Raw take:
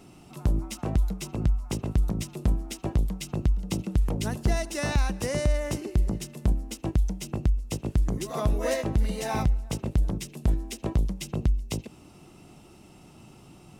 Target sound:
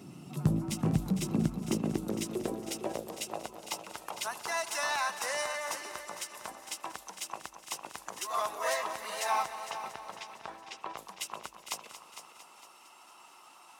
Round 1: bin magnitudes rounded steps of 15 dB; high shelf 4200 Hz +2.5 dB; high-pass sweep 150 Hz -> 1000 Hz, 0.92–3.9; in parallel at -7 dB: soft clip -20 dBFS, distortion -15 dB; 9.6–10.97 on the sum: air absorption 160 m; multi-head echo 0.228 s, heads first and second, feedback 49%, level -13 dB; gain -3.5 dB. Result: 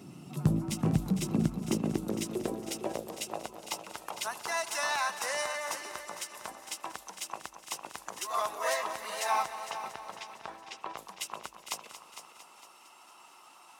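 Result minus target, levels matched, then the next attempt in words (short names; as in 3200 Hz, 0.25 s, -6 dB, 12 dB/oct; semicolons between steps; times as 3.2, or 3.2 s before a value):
soft clip: distortion -7 dB
bin magnitudes rounded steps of 15 dB; high shelf 4200 Hz +2.5 dB; high-pass sweep 150 Hz -> 1000 Hz, 0.92–3.9; in parallel at -7 dB: soft clip -28.5 dBFS, distortion -8 dB; 9.6–10.97 on the sum: air absorption 160 m; multi-head echo 0.228 s, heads first and second, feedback 49%, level -13 dB; gain -3.5 dB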